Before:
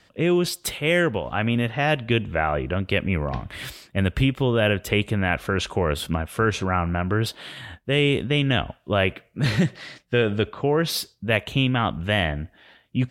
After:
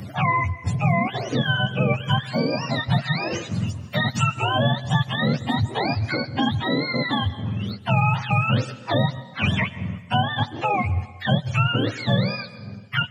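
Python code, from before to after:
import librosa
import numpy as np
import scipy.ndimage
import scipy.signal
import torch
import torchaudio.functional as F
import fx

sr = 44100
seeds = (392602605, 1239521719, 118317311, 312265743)

y = fx.octave_mirror(x, sr, pivot_hz=600.0)
y = fx.rev_plate(y, sr, seeds[0], rt60_s=0.84, hf_ratio=0.9, predelay_ms=115, drr_db=18.0)
y = fx.band_squash(y, sr, depth_pct=70)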